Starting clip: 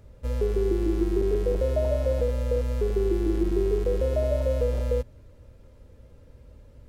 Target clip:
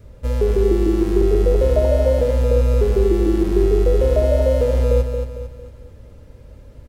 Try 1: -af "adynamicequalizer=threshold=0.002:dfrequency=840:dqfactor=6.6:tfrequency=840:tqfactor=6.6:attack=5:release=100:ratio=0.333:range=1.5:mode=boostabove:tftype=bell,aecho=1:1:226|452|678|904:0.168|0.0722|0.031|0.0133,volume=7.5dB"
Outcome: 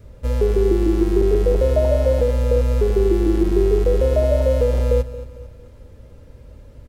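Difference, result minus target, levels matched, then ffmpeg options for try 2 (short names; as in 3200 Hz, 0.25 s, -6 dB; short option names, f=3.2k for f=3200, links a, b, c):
echo-to-direct -8.5 dB
-af "adynamicequalizer=threshold=0.002:dfrequency=840:dqfactor=6.6:tfrequency=840:tqfactor=6.6:attack=5:release=100:ratio=0.333:range=1.5:mode=boostabove:tftype=bell,aecho=1:1:226|452|678|904|1130:0.447|0.192|0.0826|0.0355|0.0153,volume=7.5dB"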